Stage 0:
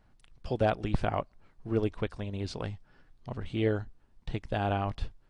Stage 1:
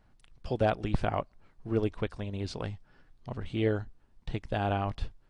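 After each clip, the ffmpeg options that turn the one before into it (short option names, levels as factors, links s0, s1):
-af anull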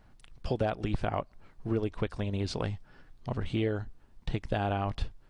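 -af "acompressor=threshold=0.0282:ratio=5,volume=1.78"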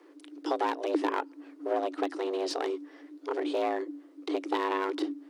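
-af "aeval=exprs='clip(val(0),-1,0.0282)':c=same,afreqshift=280,volume=1.41"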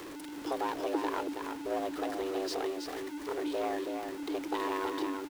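-filter_complex "[0:a]aeval=exprs='val(0)+0.5*0.0237*sgn(val(0))':c=same,asplit=2[s0][s1];[s1]aecho=0:1:325:0.531[s2];[s0][s2]amix=inputs=2:normalize=0,volume=0.473"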